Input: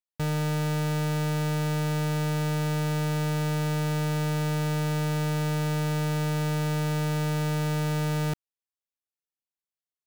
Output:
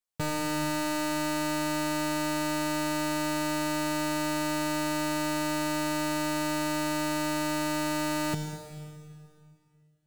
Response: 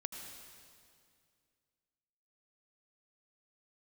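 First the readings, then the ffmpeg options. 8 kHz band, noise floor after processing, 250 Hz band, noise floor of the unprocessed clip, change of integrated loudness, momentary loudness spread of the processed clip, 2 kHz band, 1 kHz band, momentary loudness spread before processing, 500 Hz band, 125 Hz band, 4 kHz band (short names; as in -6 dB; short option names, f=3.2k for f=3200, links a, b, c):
+5.0 dB, -65 dBFS, 0.0 dB, under -85 dBFS, -2.0 dB, 2 LU, +2.5 dB, +3.0 dB, 0 LU, 0.0 dB, -14.0 dB, +3.0 dB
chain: -filter_complex "[0:a]asplit=2[a][b];[b]equalizer=f=7.9k:t=o:w=0.95:g=7[c];[1:a]atrim=start_sample=2205,adelay=10[d];[c][d]afir=irnorm=-1:irlink=0,volume=0dB[e];[a][e]amix=inputs=2:normalize=0"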